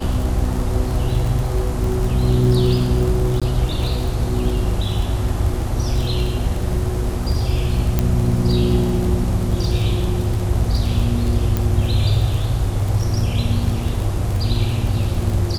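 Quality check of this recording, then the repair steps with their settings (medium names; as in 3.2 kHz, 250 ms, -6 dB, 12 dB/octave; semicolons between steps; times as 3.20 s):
crackle 28 per s -22 dBFS
3.40–3.42 s: dropout 16 ms
7.99 s: pop -4 dBFS
11.57 s: pop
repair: de-click; interpolate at 3.40 s, 16 ms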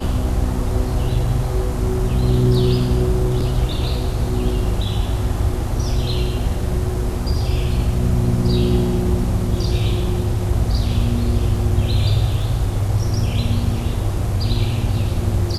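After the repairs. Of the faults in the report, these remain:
11.57 s: pop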